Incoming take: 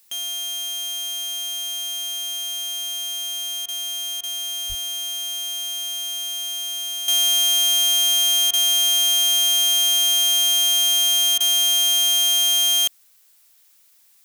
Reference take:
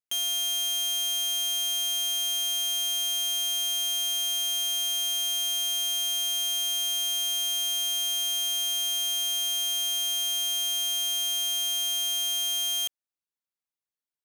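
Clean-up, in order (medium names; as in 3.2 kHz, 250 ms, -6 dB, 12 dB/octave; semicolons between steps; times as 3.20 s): 4.68–4.80 s: high-pass 140 Hz 24 dB/octave; interpolate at 3.66/4.21/8.51/11.38 s, 23 ms; expander -47 dBFS, range -21 dB; 7.08 s: gain correction -10 dB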